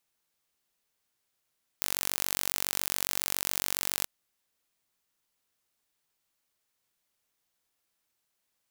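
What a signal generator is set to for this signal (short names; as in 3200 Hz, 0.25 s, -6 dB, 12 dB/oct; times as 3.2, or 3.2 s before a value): pulse train 47.2/s, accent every 0, -2.5 dBFS 2.23 s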